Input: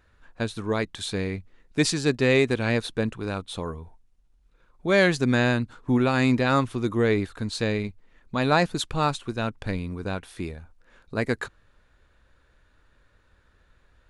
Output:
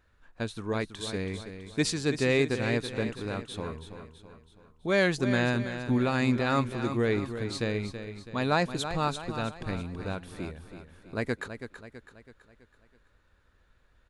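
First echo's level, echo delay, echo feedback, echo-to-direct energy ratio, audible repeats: -10.0 dB, 328 ms, 48%, -9.0 dB, 4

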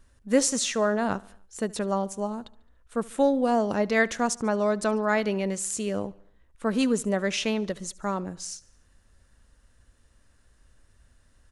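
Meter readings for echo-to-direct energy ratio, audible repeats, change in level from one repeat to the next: -21.5 dB, 3, -5.0 dB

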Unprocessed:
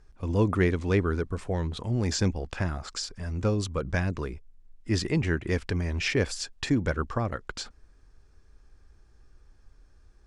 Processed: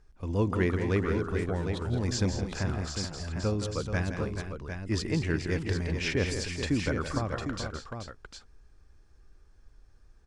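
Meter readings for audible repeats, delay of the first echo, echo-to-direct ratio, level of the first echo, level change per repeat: 4, 167 ms, -3.0 dB, -9.0 dB, no regular repeats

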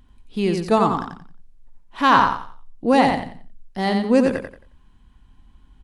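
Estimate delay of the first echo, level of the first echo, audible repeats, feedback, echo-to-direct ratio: 89 ms, -5.0 dB, 3, 28%, -4.5 dB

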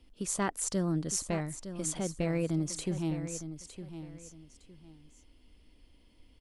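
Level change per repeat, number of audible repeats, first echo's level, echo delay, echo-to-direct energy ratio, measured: -11.5 dB, 2, -11.0 dB, 910 ms, -10.5 dB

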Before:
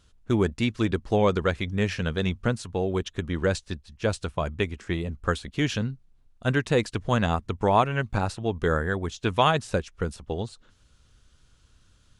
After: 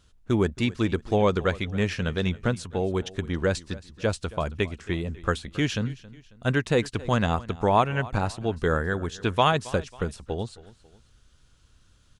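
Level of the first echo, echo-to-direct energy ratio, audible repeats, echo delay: -19.5 dB, -19.0 dB, 2, 272 ms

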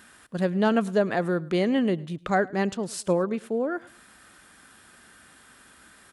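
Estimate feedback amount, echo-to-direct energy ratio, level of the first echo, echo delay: 35%, -22.0 dB, -22.5 dB, 107 ms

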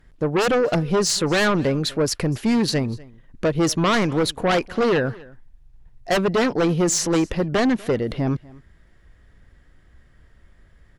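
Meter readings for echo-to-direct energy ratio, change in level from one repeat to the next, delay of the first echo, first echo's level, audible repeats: -22.5 dB, no regular repeats, 244 ms, -22.5 dB, 1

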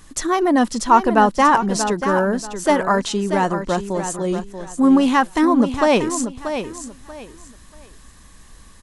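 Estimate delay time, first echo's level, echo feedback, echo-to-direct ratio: 635 ms, -9.0 dB, 25%, -8.5 dB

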